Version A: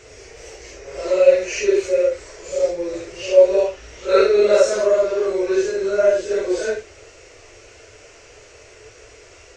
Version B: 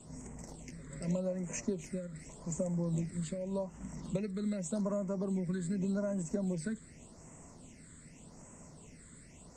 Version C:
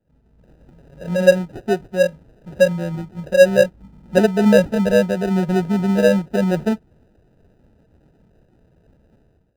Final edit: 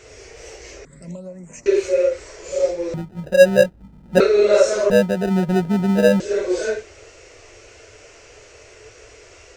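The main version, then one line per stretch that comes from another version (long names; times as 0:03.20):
A
0:00.85–0:01.66: punch in from B
0:02.94–0:04.20: punch in from C
0:04.90–0:06.20: punch in from C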